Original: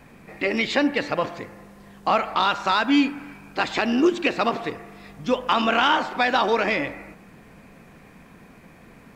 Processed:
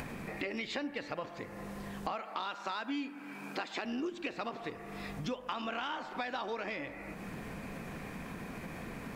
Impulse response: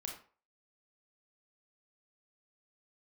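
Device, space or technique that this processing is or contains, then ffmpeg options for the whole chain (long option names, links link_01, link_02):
upward and downward compression: -filter_complex "[0:a]acompressor=mode=upward:threshold=-35dB:ratio=2.5,acompressor=threshold=-37dB:ratio=5,asettb=1/sr,asplit=3[link_01][link_02][link_03];[link_01]atrim=end=2.124[link_04];[link_02]atrim=start=2.12:end=3.85,asetpts=PTS-STARTPTS,afade=type=in:duration=0.004:curve=qsin,afade=type=out:start_time=1.726:duration=0.004:curve=qsin,highpass=frequency=190:width=0.5412,highpass=frequency=190:width=1.3066[link_05];[link_03]atrim=start=3.846[link_06];[link_04][link_05]acrossfade=duration=0.004:curve1=hsin:curve2=qsin[link_07];[link_07][link_06]acrossfade=duration=0.004:curve1=qsin:curve2=hsin"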